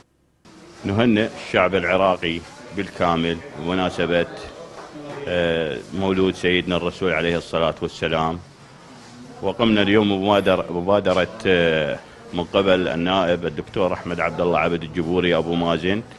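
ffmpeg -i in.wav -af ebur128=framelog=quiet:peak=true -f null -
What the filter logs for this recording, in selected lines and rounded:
Integrated loudness:
  I:         -20.7 LUFS
  Threshold: -31.3 LUFS
Loudness range:
  LRA:         4.2 LU
  Threshold: -41.3 LUFS
  LRA low:   -23.5 LUFS
  LRA high:  -19.3 LUFS
True peak:
  Peak:       -1.2 dBFS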